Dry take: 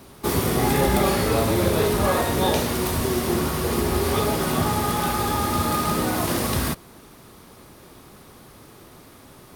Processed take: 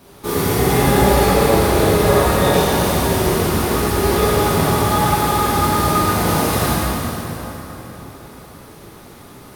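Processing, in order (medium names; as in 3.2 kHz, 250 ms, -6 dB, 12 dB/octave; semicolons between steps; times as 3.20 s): plate-style reverb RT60 4 s, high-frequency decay 0.7×, DRR -9 dB; trim -3 dB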